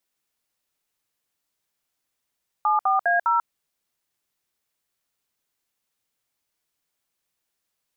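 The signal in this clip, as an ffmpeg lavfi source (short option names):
-f lavfi -i "aevalsrc='0.1*clip(min(mod(t,0.203),0.141-mod(t,0.203))/0.002,0,1)*(eq(floor(t/0.203),0)*(sin(2*PI*852*mod(t,0.203))+sin(2*PI*1209*mod(t,0.203)))+eq(floor(t/0.203),1)*(sin(2*PI*770*mod(t,0.203))+sin(2*PI*1209*mod(t,0.203)))+eq(floor(t/0.203),2)*(sin(2*PI*697*mod(t,0.203))+sin(2*PI*1633*mod(t,0.203)))+eq(floor(t/0.203),3)*(sin(2*PI*941*mod(t,0.203))+sin(2*PI*1336*mod(t,0.203))))':d=0.812:s=44100"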